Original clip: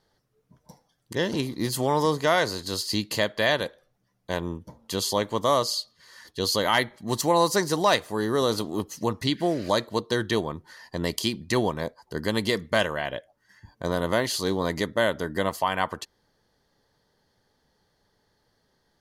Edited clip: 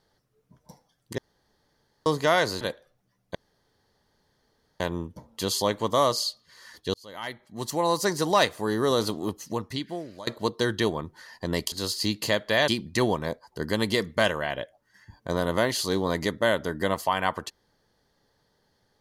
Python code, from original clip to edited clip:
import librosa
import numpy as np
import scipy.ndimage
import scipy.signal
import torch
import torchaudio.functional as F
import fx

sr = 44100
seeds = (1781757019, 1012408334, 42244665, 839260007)

y = fx.edit(x, sr, fx.room_tone_fill(start_s=1.18, length_s=0.88),
    fx.move(start_s=2.61, length_s=0.96, to_s=11.23),
    fx.insert_room_tone(at_s=4.31, length_s=1.45),
    fx.fade_in_span(start_s=6.45, length_s=1.41),
    fx.fade_out_to(start_s=8.61, length_s=1.17, floor_db=-21.0), tone=tone)